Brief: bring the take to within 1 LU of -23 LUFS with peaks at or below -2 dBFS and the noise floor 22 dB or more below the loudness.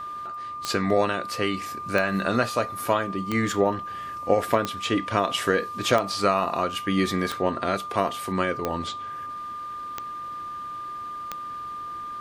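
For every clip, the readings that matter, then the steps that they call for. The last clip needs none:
clicks found 9; steady tone 1.2 kHz; tone level -32 dBFS; loudness -26.5 LUFS; peak level -6.0 dBFS; loudness target -23.0 LUFS
-> de-click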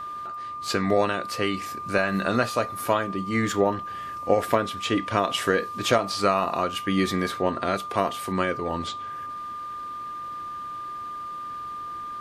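clicks found 0; steady tone 1.2 kHz; tone level -32 dBFS
-> band-stop 1.2 kHz, Q 30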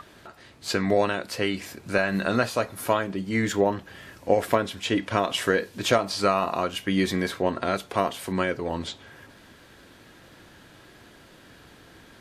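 steady tone not found; loudness -26.0 LUFS; peak level -6.5 dBFS; loudness target -23.0 LUFS
-> trim +3 dB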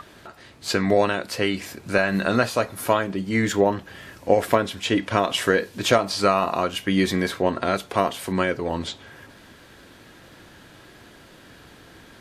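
loudness -23.0 LUFS; peak level -3.5 dBFS; noise floor -49 dBFS

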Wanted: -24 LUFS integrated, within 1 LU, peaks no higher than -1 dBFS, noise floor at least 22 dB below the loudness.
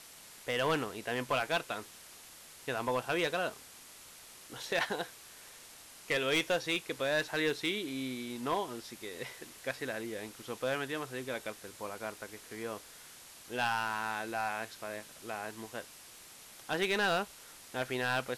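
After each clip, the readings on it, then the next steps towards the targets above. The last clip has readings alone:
clipped samples 0.4%; clipping level -24.0 dBFS; noise floor -53 dBFS; noise floor target -58 dBFS; loudness -35.5 LUFS; peak level -24.0 dBFS; loudness target -24.0 LUFS
-> clip repair -24 dBFS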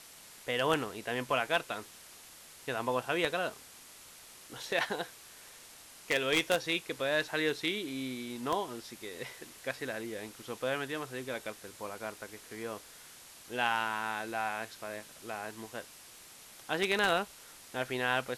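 clipped samples 0.0%; noise floor -53 dBFS; noise floor target -57 dBFS
-> noise reduction 6 dB, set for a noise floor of -53 dBFS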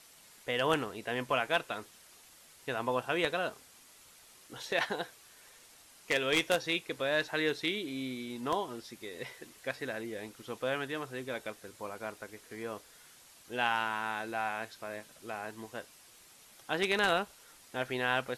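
noise floor -58 dBFS; loudness -34.5 LUFS; peak level -15.0 dBFS; loudness target -24.0 LUFS
-> trim +10.5 dB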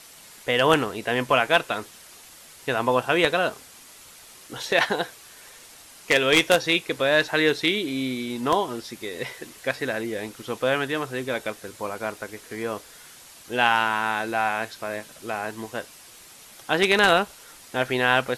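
loudness -24.0 LUFS; peak level -4.5 dBFS; noise floor -48 dBFS

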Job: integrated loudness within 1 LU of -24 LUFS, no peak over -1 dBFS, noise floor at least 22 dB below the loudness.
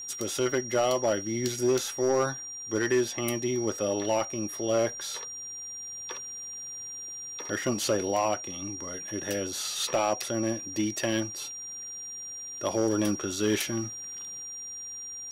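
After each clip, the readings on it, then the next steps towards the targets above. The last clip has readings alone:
clipped samples 0.5%; clipping level -18.5 dBFS; steady tone 5.7 kHz; tone level -37 dBFS; loudness -30.0 LUFS; peak level -18.5 dBFS; loudness target -24.0 LUFS
-> clip repair -18.5 dBFS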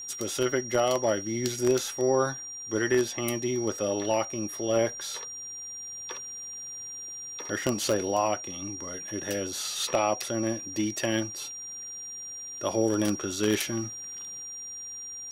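clipped samples 0.0%; steady tone 5.7 kHz; tone level -37 dBFS
-> band-stop 5.7 kHz, Q 30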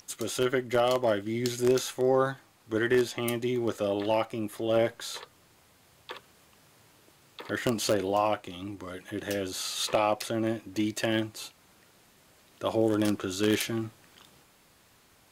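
steady tone not found; loudness -29.0 LUFS; peak level -9.5 dBFS; loudness target -24.0 LUFS
-> trim +5 dB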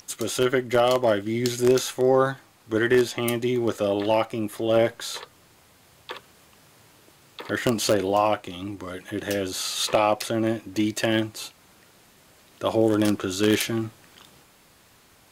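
loudness -24.0 LUFS; peak level -4.5 dBFS; noise floor -56 dBFS

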